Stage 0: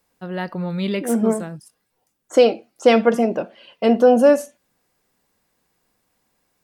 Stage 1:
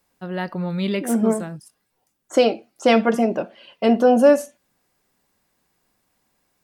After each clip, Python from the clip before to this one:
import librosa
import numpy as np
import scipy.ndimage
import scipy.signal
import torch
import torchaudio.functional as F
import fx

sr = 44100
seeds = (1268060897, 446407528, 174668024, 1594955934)

y = fx.notch(x, sr, hz=480.0, q=13.0)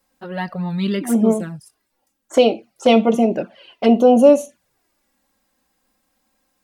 y = fx.env_flanger(x, sr, rest_ms=3.8, full_db=-16.0)
y = y * librosa.db_to_amplitude(4.0)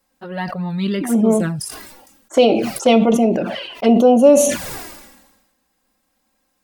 y = fx.sustainer(x, sr, db_per_s=48.0)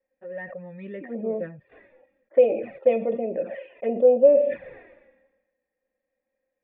y = fx.formant_cascade(x, sr, vowel='e')